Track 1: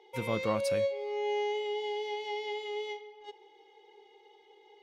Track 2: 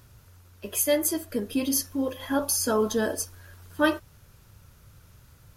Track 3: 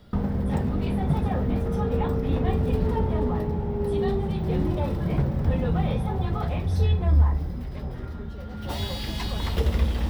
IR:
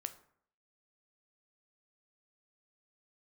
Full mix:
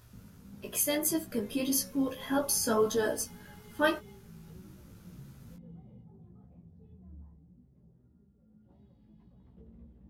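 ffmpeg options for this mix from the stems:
-filter_complex "[0:a]alimiter=level_in=3.5dB:limit=-24dB:level=0:latency=1,volume=-3.5dB,adelay=1200,volume=-19.5dB[a];[1:a]tremolo=f=100:d=0.261,volume=1dB[b];[2:a]bandpass=f=190:t=q:w=1.6:csg=0,volume=-19dB[c];[a][b][c]amix=inputs=3:normalize=0,flanger=delay=15.5:depth=2.6:speed=1.7"

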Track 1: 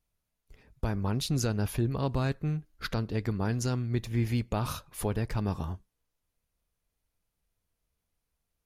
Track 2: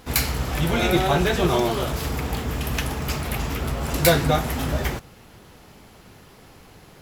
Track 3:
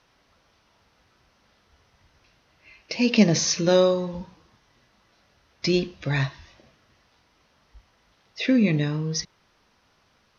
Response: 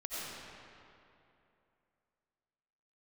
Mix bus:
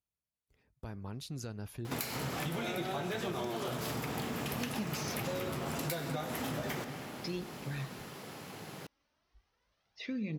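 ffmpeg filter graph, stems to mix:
-filter_complex "[0:a]highpass=60,volume=-12.5dB[a];[1:a]highpass=f=120:w=0.5412,highpass=f=120:w=1.3066,acompressor=threshold=-34dB:ratio=3,adelay=1850,volume=1dB,asplit=2[b][c];[c]volume=-11dB[d];[2:a]aphaser=in_gain=1:out_gain=1:delay=3.7:decay=0.46:speed=0.34:type=triangular,adelay=1600,volume=-16.5dB[e];[3:a]atrim=start_sample=2205[f];[d][f]afir=irnorm=-1:irlink=0[g];[a][b][e][g]amix=inputs=4:normalize=0,acompressor=threshold=-34dB:ratio=4"

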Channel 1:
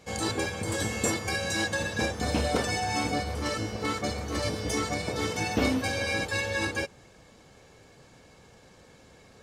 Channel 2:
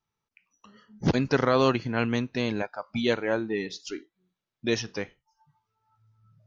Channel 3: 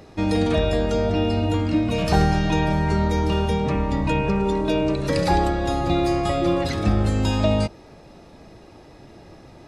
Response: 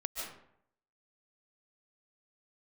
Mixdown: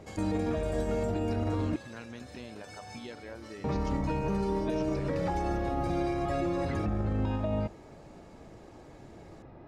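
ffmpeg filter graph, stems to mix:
-filter_complex "[0:a]alimiter=limit=-22.5dB:level=0:latency=1:release=312,acompressor=threshold=-36dB:ratio=2.5,volume=-8.5dB,asplit=2[a][b];[b]volume=-10dB[c];[1:a]volume=-9dB,asplit=2[d][e];[e]volume=-23.5dB[f];[2:a]lowpass=1.7k,alimiter=limit=-16dB:level=0:latency=1:release=61,volume=-4.5dB,asplit=3[g][h][i];[g]atrim=end=1.76,asetpts=PTS-STARTPTS,afade=t=out:st=1.756:d=0.004:c=hsin[j];[h]atrim=start=1.76:end=3.64,asetpts=PTS-STARTPTS,volume=0[k];[i]atrim=start=3.64,asetpts=PTS-STARTPTS,afade=t=in:d=0.004:c=hsin[l];[j][k][l]concat=n=3:v=0:a=1[m];[a][d]amix=inputs=2:normalize=0,acompressor=threshold=-43dB:ratio=6,volume=0dB[n];[3:a]atrim=start_sample=2205[o];[c][f]amix=inputs=2:normalize=0[p];[p][o]afir=irnorm=-1:irlink=0[q];[m][n][q]amix=inputs=3:normalize=0,alimiter=limit=-22.5dB:level=0:latency=1:release=35"

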